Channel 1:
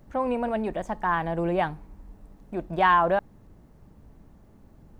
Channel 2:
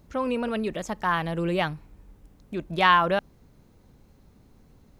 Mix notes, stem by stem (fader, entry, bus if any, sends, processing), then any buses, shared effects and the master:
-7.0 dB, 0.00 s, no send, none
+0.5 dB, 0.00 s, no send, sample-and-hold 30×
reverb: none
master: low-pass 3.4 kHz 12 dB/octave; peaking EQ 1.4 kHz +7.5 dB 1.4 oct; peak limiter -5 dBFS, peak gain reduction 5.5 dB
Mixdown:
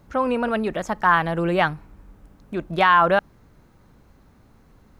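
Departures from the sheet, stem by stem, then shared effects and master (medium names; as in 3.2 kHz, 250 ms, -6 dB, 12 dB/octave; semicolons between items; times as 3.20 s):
stem 2: missing sample-and-hold 30×; master: missing low-pass 3.4 kHz 12 dB/octave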